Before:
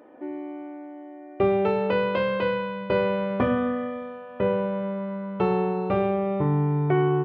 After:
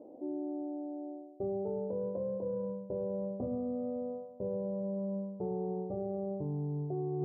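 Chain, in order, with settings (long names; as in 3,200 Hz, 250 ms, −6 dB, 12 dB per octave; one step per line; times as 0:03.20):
Butterworth low-pass 730 Hz 36 dB per octave
reversed playback
downward compressor 6 to 1, threshold −34 dBFS, peak gain reduction 15 dB
reversed playback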